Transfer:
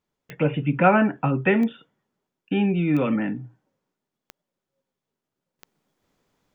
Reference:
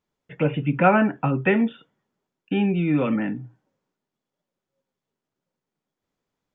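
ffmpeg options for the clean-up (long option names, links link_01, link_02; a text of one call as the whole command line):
ffmpeg -i in.wav -af "adeclick=threshold=4,asetnsamples=nb_out_samples=441:pad=0,asendcmd='5.59 volume volume -11dB',volume=0dB" out.wav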